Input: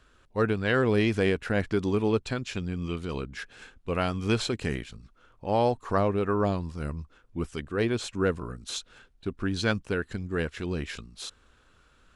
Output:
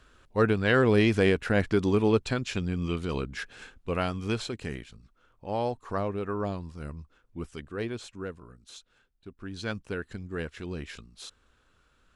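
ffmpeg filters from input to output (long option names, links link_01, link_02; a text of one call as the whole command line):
ffmpeg -i in.wav -af "volume=10dB,afade=type=out:start_time=3.51:duration=0.93:silence=0.421697,afade=type=out:start_time=7.69:duration=0.66:silence=0.421697,afade=type=in:start_time=9.35:duration=0.55:silence=0.398107" out.wav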